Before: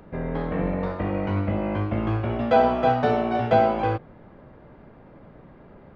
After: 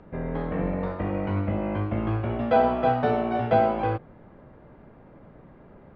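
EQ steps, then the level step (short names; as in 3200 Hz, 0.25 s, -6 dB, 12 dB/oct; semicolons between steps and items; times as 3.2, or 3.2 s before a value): air absorption 150 m; -1.5 dB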